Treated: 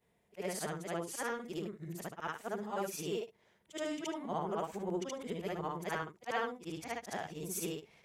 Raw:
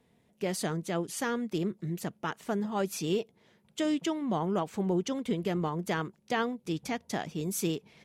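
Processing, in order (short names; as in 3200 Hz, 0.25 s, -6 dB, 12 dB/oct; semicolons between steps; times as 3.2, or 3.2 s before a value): short-time reversal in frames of 0.153 s; graphic EQ 125/250/4000 Hz -5/-9/-5 dB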